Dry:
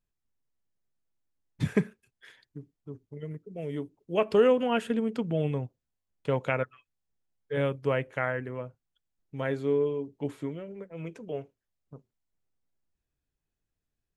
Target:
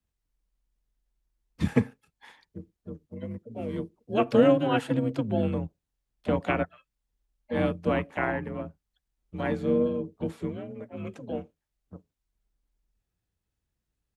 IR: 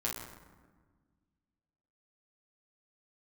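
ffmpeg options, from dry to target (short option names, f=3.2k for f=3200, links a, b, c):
-filter_complex "[0:a]afreqshift=42,asplit=3[a][b][c];[b]asetrate=22050,aresample=44100,atempo=2,volume=-3dB[d];[c]asetrate=55563,aresample=44100,atempo=0.793701,volume=-15dB[e];[a][d][e]amix=inputs=3:normalize=0"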